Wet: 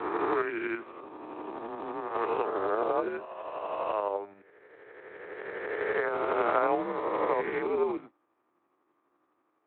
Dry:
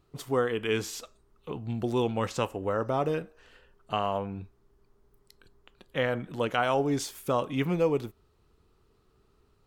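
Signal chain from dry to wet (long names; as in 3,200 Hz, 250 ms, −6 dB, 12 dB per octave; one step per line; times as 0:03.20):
peak hold with a rise ahead of every peak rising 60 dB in 2.98 s
0:00.80–0:02.15: downward compressor 6 to 1, threshold −26 dBFS, peak gain reduction 6.5 dB
shaped tremolo saw up 12 Hz, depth 50%
high-frequency loss of the air 50 metres
single-sideband voice off tune −93 Hz 470–2,300 Hz
Speex 15 kbit/s 8,000 Hz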